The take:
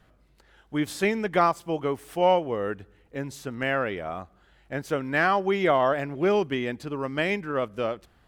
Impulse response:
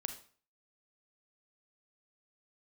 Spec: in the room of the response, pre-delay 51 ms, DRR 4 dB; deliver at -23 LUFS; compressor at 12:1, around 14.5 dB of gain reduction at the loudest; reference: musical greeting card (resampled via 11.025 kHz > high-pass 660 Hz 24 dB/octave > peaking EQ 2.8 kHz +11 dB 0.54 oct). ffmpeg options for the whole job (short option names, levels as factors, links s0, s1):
-filter_complex "[0:a]acompressor=threshold=0.0282:ratio=12,asplit=2[s0][s1];[1:a]atrim=start_sample=2205,adelay=51[s2];[s1][s2]afir=irnorm=-1:irlink=0,volume=0.668[s3];[s0][s3]amix=inputs=2:normalize=0,aresample=11025,aresample=44100,highpass=f=660:w=0.5412,highpass=f=660:w=1.3066,equalizer=f=2800:t=o:w=0.54:g=11,volume=5.01"